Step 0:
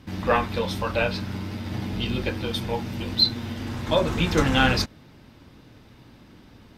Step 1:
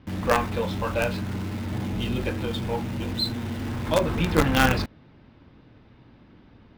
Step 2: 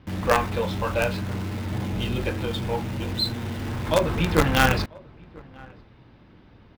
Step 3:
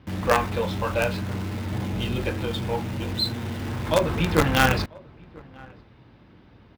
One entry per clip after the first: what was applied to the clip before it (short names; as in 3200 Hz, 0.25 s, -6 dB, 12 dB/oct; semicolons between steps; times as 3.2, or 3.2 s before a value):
air absorption 250 m; in parallel at -10 dB: companded quantiser 2-bit; on the sum: gain -2 dB
bell 250 Hz -4.5 dB 0.46 oct; outdoor echo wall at 170 m, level -24 dB; gain +1.5 dB
HPF 43 Hz